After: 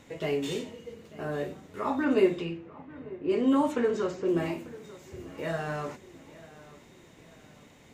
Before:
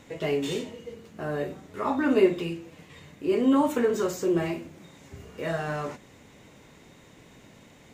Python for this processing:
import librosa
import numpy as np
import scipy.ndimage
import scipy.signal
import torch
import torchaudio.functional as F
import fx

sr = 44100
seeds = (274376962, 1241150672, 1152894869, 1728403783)

y = fx.echo_feedback(x, sr, ms=893, feedback_pct=41, wet_db=-19)
y = fx.env_lowpass(y, sr, base_hz=1200.0, full_db=-16.5, at=(2.04, 4.27), fade=0.02)
y = F.gain(torch.from_numpy(y), -2.5).numpy()